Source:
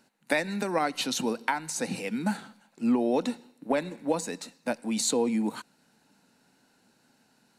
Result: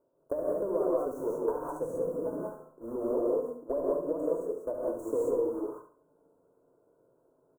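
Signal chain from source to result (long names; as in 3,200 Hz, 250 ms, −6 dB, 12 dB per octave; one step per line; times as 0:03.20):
one scale factor per block 3 bits
inverse Chebyshev band-stop filter 2,100–4,300 Hz, stop band 70 dB
low-shelf EQ 350 Hz −12 dB
mains-hum notches 60/120/180/240 Hz
downward compressor, threshold −32 dBFS, peak gain reduction 7.5 dB
high-frequency loss of the air 220 metres
phaser with its sweep stopped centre 800 Hz, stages 6
on a send: repeating echo 70 ms, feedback 33%, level −8.5 dB
on the sum: reverb whose tail is shaped and stops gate 220 ms rising, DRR −3.5 dB
level +7 dB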